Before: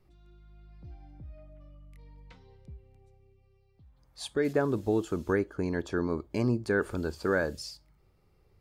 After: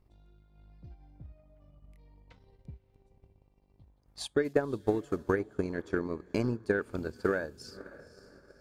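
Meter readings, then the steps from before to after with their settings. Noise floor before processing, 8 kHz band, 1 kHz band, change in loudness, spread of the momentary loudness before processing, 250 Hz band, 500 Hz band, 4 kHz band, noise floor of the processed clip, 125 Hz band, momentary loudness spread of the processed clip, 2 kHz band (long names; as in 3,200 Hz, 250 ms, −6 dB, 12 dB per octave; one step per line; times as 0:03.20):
−66 dBFS, −3.0 dB, −2.0 dB, −2.0 dB, 21 LU, −3.0 dB, −1.5 dB, −2.5 dB, −68 dBFS, −4.0 dB, 18 LU, −2.5 dB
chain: hum with harmonics 50 Hz, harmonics 21, −63 dBFS −6 dB per octave
feedback delay with all-pass diffusion 530 ms, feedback 41%, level −14.5 dB
transient designer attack +10 dB, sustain −6 dB
level −6.5 dB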